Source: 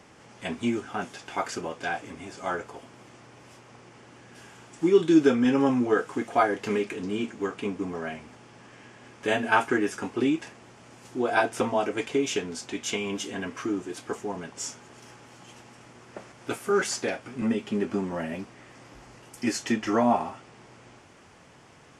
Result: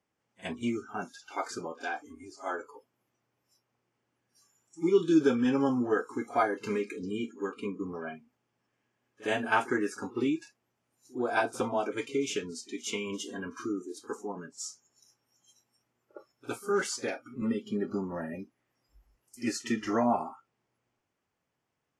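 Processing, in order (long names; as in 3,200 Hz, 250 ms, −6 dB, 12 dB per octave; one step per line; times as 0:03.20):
noise reduction from a noise print of the clip's start 25 dB
echo ahead of the sound 59 ms −19.5 dB
level −4.5 dB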